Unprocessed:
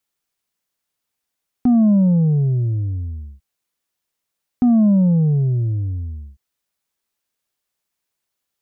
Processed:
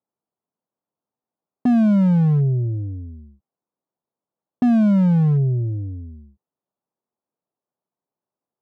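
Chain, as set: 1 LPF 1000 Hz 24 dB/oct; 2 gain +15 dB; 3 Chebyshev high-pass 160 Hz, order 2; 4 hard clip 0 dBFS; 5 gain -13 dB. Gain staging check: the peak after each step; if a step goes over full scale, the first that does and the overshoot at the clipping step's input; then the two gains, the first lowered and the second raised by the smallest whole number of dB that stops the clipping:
-10.5, +4.5, +6.5, 0.0, -13.0 dBFS; step 2, 6.5 dB; step 2 +8 dB, step 5 -6 dB

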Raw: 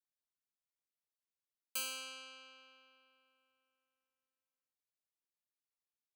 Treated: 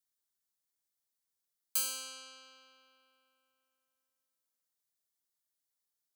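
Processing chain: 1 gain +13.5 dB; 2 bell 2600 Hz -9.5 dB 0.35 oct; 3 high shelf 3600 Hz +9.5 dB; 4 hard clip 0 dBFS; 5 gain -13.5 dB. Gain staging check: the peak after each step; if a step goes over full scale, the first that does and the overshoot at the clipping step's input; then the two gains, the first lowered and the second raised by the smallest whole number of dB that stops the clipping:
-13.5, -14.0, -5.0, -5.0, -18.5 dBFS; no overload

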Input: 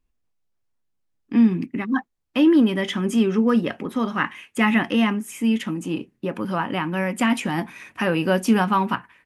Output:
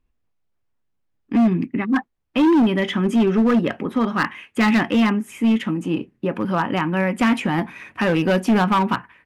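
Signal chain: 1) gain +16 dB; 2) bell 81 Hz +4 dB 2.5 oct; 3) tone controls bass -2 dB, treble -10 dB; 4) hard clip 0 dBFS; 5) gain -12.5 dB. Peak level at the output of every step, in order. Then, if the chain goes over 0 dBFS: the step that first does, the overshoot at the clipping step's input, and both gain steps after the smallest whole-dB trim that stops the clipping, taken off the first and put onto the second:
+9.5, +10.0, +9.0, 0.0, -12.5 dBFS; step 1, 9.0 dB; step 1 +7 dB, step 5 -3.5 dB

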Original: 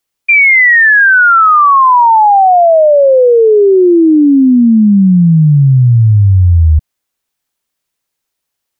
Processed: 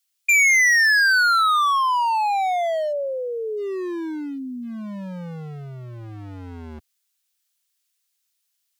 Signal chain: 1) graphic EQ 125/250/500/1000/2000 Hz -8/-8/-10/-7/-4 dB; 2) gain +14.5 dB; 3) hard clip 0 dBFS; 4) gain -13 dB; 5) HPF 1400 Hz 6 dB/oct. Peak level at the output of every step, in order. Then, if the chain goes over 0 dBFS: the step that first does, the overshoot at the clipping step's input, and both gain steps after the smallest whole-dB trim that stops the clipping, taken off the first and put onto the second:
-6.0, +8.5, 0.0, -13.0, -10.5 dBFS; step 2, 8.5 dB; step 2 +5.5 dB, step 4 -4 dB

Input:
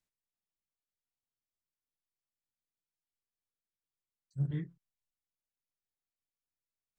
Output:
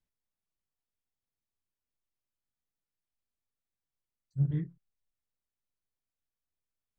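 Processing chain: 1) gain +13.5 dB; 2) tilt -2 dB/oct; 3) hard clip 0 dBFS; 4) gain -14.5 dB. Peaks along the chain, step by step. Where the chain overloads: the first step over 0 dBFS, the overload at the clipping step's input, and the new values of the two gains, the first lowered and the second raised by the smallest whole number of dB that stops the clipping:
-10.0, -4.5, -4.5, -19.0 dBFS; no overload

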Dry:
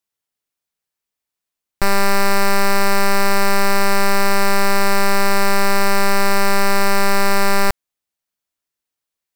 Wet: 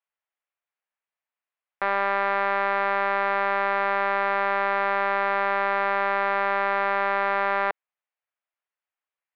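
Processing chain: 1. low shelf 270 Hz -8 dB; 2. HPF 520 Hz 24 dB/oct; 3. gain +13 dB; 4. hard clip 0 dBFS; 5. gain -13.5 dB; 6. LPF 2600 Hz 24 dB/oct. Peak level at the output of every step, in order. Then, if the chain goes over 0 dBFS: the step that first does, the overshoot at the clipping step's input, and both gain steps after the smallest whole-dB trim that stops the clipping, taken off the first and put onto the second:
-8.0, -4.0, +9.0, 0.0, -13.5, -13.0 dBFS; step 3, 9.0 dB; step 3 +4 dB, step 5 -4.5 dB

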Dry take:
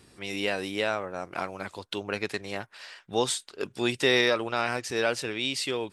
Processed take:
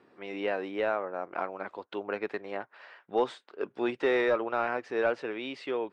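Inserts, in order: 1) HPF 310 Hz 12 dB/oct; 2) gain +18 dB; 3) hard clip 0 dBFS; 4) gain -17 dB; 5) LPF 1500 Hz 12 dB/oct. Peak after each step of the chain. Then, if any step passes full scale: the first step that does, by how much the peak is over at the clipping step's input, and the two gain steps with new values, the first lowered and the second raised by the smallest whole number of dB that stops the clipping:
-11.0, +7.0, 0.0, -17.0, -16.5 dBFS; step 2, 7.0 dB; step 2 +11 dB, step 4 -10 dB

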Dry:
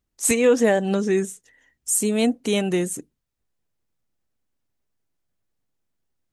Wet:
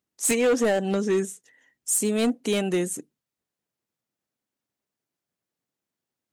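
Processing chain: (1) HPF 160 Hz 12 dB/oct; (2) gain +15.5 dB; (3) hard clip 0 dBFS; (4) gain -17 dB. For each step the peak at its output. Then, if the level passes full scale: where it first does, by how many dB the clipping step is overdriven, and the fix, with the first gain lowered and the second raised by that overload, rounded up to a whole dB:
-7.5, +8.0, 0.0, -17.0 dBFS; step 2, 8.0 dB; step 2 +7.5 dB, step 4 -9 dB

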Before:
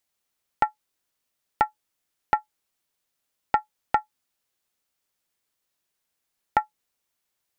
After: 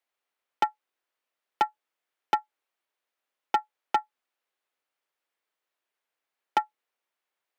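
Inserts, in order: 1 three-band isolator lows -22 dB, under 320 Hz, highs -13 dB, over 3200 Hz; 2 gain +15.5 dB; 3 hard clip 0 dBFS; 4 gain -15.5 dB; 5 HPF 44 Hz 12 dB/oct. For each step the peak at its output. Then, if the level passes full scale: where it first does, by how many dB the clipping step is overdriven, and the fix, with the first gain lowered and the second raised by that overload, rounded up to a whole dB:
-7.5, +8.0, 0.0, -15.5, -14.5 dBFS; step 2, 8.0 dB; step 2 +7.5 dB, step 4 -7.5 dB

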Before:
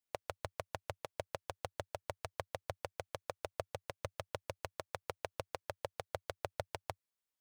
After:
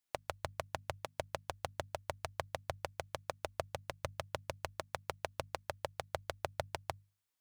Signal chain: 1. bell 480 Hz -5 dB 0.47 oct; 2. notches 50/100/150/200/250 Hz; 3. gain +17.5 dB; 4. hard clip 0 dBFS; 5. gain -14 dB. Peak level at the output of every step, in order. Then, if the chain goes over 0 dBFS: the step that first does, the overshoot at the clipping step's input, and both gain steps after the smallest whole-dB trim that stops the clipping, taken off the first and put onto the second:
-19.5, -19.5, -2.0, -2.0, -16.0 dBFS; no overload

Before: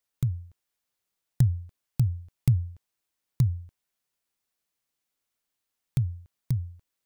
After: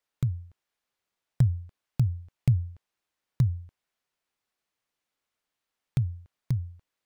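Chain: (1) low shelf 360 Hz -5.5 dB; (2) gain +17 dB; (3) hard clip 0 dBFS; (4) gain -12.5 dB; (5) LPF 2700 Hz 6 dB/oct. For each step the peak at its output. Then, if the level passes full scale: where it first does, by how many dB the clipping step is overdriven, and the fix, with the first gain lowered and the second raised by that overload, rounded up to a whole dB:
-13.5, +3.5, 0.0, -12.5, -12.5 dBFS; step 2, 3.5 dB; step 2 +13 dB, step 4 -8.5 dB

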